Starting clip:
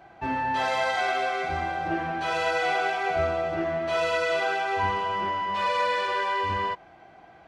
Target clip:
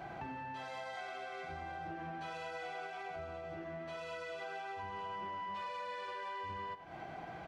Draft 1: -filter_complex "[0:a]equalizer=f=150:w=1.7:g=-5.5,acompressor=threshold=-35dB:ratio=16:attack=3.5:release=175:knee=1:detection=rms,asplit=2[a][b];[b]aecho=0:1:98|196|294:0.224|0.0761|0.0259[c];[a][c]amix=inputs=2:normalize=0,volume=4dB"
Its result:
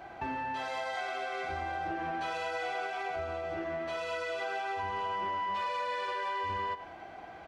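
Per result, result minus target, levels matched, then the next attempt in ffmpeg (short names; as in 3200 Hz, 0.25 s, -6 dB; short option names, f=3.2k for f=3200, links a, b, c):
compressor: peak gain reduction -9 dB; 125 Hz band -5.0 dB
-filter_complex "[0:a]equalizer=f=150:w=1.7:g=-5.5,acompressor=threshold=-44dB:ratio=16:attack=3.5:release=175:knee=1:detection=rms,asplit=2[a][b];[b]aecho=0:1:98|196|294:0.224|0.0761|0.0259[c];[a][c]amix=inputs=2:normalize=0,volume=4dB"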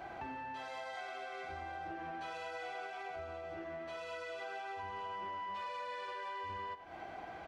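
125 Hz band -5.0 dB
-filter_complex "[0:a]equalizer=f=150:w=1.7:g=5.5,acompressor=threshold=-44dB:ratio=16:attack=3.5:release=175:knee=1:detection=rms,asplit=2[a][b];[b]aecho=0:1:98|196|294:0.224|0.0761|0.0259[c];[a][c]amix=inputs=2:normalize=0,volume=4dB"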